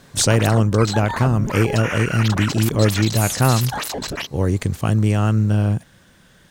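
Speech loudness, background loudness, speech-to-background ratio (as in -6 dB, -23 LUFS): -19.0 LUFS, -26.0 LUFS, 7.0 dB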